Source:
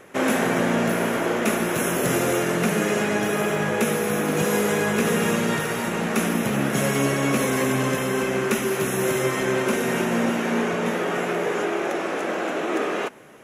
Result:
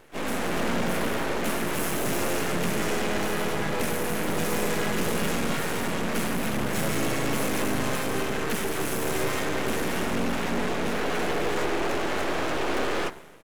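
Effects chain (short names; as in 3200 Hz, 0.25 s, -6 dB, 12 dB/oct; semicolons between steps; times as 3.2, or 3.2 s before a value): harmoniser -4 st -6 dB, +3 st -5 dB; AGC; soft clip -13 dBFS, distortion -12 dB; de-hum 64.13 Hz, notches 33; half-wave rectifier; gain -4.5 dB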